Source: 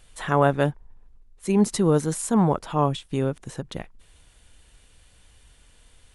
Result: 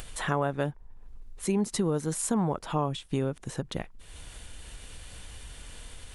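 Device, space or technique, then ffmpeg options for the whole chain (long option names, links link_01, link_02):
upward and downward compression: -af "acompressor=mode=upward:threshold=-32dB:ratio=2.5,acompressor=threshold=-24dB:ratio=5"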